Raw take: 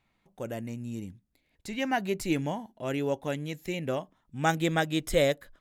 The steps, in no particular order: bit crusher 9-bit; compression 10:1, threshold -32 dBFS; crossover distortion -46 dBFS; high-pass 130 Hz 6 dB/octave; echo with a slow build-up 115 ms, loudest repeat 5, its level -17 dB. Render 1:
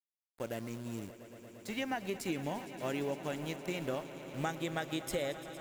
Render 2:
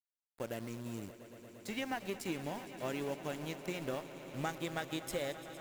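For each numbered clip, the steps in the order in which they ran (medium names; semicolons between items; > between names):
high-pass > crossover distortion > bit crusher > compression > echo with a slow build-up; compression > high-pass > crossover distortion > bit crusher > echo with a slow build-up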